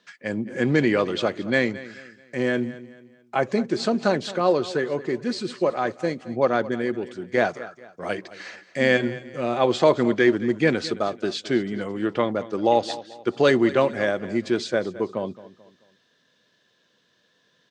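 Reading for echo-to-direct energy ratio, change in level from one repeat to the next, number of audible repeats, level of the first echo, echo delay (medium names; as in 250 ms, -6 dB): -16.5 dB, -8.5 dB, 3, -17.0 dB, 218 ms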